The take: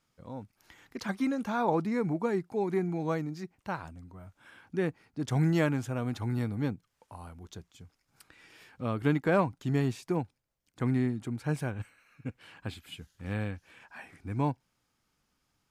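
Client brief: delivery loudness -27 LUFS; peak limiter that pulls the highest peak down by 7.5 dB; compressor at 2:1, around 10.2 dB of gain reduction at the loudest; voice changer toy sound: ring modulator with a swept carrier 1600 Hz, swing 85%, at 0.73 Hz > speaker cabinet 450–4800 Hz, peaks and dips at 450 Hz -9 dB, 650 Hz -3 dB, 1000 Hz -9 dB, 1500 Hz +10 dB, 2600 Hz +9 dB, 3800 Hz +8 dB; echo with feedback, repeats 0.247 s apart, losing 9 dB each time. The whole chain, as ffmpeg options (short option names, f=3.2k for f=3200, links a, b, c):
-af "acompressor=threshold=-41dB:ratio=2,alimiter=level_in=7.5dB:limit=-24dB:level=0:latency=1,volume=-7.5dB,aecho=1:1:247|494|741|988:0.355|0.124|0.0435|0.0152,aeval=exprs='val(0)*sin(2*PI*1600*n/s+1600*0.85/0.73*sin(2*PI*0.73*n/s))':c=same,highpass=450,equalizer=f=450:t=q:w=4:g=-9,equalizer=f=650:t=q:w=4:g=-3,equalizer=f=1k:t=q:w=4:g=-9,equalizer=f=1.5k:t=q:w=4:g=10,equalizer=f=2.6k:t=q:w=4:g=9,equalizer=f=3.8k:t=q:w=4:g=8,lowpass=f=4.8k:w=0.5412,lowpass=f=4.8k:w=1.3066,volume=9dB"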